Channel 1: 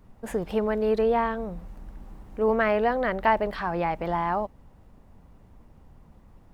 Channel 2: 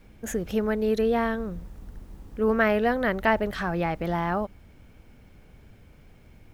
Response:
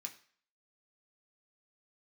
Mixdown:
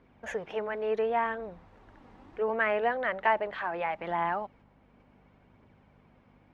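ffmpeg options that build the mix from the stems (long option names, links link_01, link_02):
-filter_complex "[0:a]volume=-3dB,asplit=2[link_01][link_02];[1:a]agate=range=-9dB:threshold=-46dB:ratio=16:detection=peak,aphaser=in_gain=1:out_gain=1:delay=4.4:decay=0.51:speed=0.71:type=triangular,volume=-1,volume=1dB[link_03];[link_02]apad=whole_len=288389[link_04];[link_03][link_04]sidechaincompress=threshold=-32dB:ratio=8:attack=7.8:release=1110[link_05];[link_01][link_05]amix=inputs=2:normalize=0,lowpass=2900,aeval=exprs='val(0)+0.00251*(sin(2*PI*50*n/s)+sin(2*PI*2*50*n/s)/2+sin(2*PI*3*50*n/s)/3+sin(2*PI*4*50*n/s)/4+sin(2*PI*5*50*n/s)/5)':channel_layout=same,highpass=frequency=340:poles=1"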